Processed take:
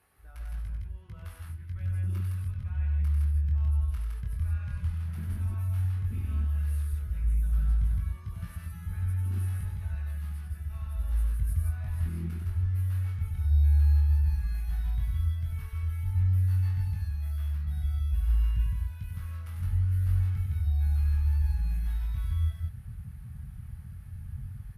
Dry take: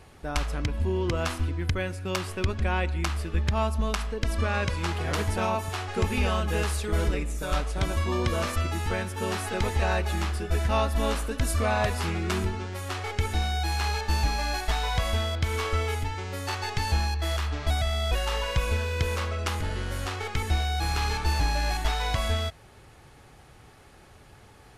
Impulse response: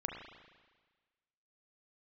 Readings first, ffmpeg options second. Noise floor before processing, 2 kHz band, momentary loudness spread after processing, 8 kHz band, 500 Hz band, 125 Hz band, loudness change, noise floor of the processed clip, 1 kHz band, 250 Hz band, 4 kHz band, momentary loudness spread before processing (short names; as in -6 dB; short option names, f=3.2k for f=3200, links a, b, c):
-52 dBFS, -20.5 dB, 14 LU, under -15 dB, under -30 dB, +1.5 dB, -2.0 dB, -44 dBFS, -25.0 dB, -13.5 dB, under -20 dB, 5 LU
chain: -filter_complex "[0:a]highpass=48,areverse,acompressor=threshold=-38dB:ratio=4,areverse,aexciter=amount=10:drive=6.1:freq=10k,acrossover=split=500[a][b];[a]acompressor=threshold=-43dB:ratio=4[c];[c][b]amix=inputs=2:normalize=0,equalizer=f=1.6k:w=1.1:g=9,aecho=1:1:96.21|163.3:0.562|0.794,asubboost=boost=10.5:cutoff=130,flanger=delay=19:depth=6.2:speed=0.11,afwtdn=0.0398" -ar 32000 -c:a aac -b:a 64k